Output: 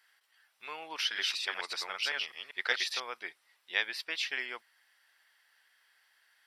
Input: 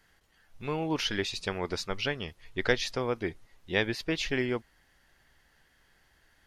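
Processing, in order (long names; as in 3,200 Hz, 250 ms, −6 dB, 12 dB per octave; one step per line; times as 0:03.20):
0:00.96–0:03.00: delay that plays each chunk backwards 194 ms, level −2 dB
high-pass filter 1,200 Hz 12 dB per octave
notch filter 6,600 Hz, Q 5.4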